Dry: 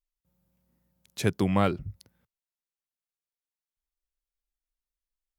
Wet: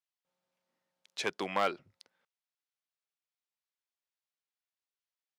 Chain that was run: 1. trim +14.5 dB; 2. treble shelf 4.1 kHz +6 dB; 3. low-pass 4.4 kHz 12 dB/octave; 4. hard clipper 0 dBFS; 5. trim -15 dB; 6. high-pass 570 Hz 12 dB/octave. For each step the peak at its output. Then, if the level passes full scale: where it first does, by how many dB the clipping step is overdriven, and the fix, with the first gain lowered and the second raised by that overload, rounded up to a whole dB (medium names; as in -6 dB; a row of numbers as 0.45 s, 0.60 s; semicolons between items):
+5.5 dBFS, +6.5 dBFS, +6.0 dBFS, 0.0 dBFS, -15.0 dBFS, -14.5 dBFS; step 1, 6.0 dB; step 1 +8.5 dB, step 5 -9 dB